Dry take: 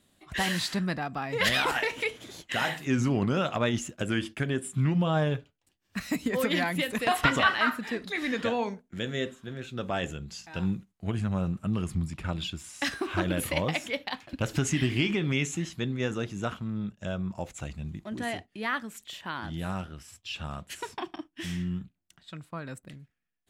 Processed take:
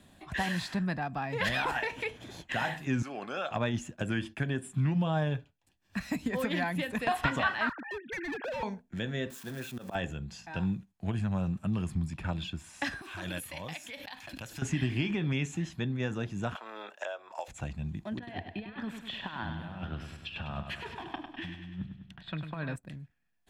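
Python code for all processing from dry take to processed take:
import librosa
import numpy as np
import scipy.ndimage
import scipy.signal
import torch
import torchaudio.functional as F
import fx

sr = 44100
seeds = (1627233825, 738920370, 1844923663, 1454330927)

y = fx.chain(x, sr, fx.highpass(hz=580.0, slope=12),
    fx.notch_comb(f0_hz=960.0), at=(3.02, 3.51))
y = fx.chain(y, sr, fx.sine_speech(),
    fx.highpass(hz=310.0, slope=12),
    fx.clip_hard(threshold_db=-32.0), at=(7.69, 8.63))
y = fx.chain(y, sr, fx.crossing_spikes(level_db=-31.5),
    fx.highpass(hz=160.0, slope=12),
    fx.auto_swell(attack_ms=132.0), at=(9.3, 9.95))
y = fx.chain(y, sr, fx.pre_emphasis(coefficient=0.9),
    fx.pre_swell(db_per_s=34.0), at=(13.01, 14.62))
y = fx.chain(y, sr, fx.cheby2_highpass(hz=190.0, order=4, stop_db=50),
    fx.band_squash(depth_pct=100), at=(16.55, 17.48))
y = fx.chain(y, sr, fx.high_shelf_res(hz=4900.0, db=-12.0, q=1.5),
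    fx.over_compress(threshold_db=-38.0, ratio=-0.5),
    fx.echo_feedback(ms=100, feedback_pct=52, wet_db=-8.0), at=(18.17, 22.76))
y = fx.high_shelf(y, sr, hz=3400.0, db=-8.0)
y = y + 0.32 * np.pad(y, (int(1.2 * sr / 1000.0), 0))[:len(y)]
y = fx.band_squash(y, sr, depth_pct=40)
y = y * librosa.db_to_amplitude(-2.5)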